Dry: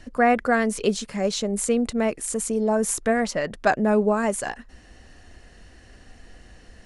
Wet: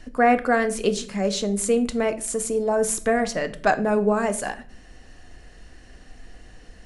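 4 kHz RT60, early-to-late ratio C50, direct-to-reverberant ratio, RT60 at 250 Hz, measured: 0.35 s, 15.5 dB, 9.5 dB, 0.80 s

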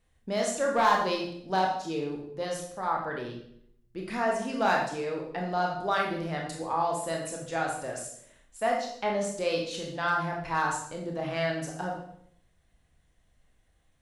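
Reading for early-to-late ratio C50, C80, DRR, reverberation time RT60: 4.0 dB, 7.5 dB, -0.5 dB, 0.70 s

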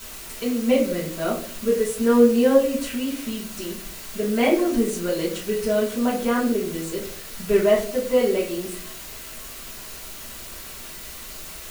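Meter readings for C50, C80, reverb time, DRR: 7.0 dB, 11.5 dB, 0.55 s, -7.0 dB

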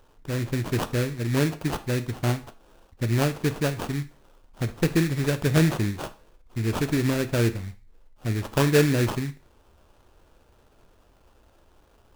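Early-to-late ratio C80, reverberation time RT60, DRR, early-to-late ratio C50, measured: 21.0 dB, no single decay rate, 10.5 dB, 16.0 dB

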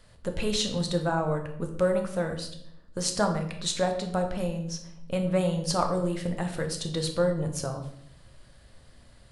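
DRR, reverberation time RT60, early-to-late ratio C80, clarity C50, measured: 4.0 dB, 0.70 s, 11.0 dB, 8.0 dB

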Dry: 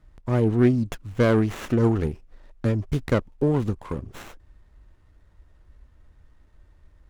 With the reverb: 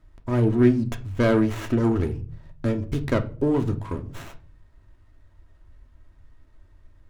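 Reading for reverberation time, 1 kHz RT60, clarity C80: 0.40 s, 0.35 s, 21.0 dB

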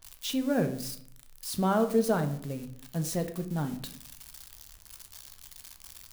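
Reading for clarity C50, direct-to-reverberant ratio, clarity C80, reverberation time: 12.5 dB, 7.5 dB, 15.0 dB, 0.65 s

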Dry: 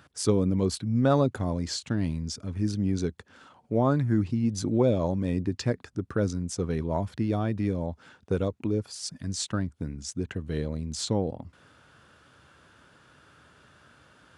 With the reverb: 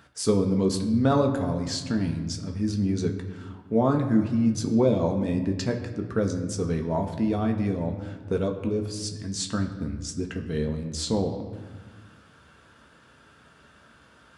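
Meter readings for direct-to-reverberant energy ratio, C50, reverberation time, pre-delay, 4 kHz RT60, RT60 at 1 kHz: 2.5 dB, 9.0 dB, 1.4 s, 4 ms, 1.0 s, 1.4 s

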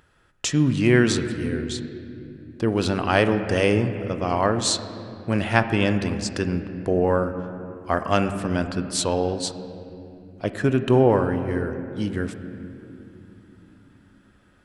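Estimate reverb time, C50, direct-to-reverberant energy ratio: 2.9 s, 9.5 dB, 8.5 dB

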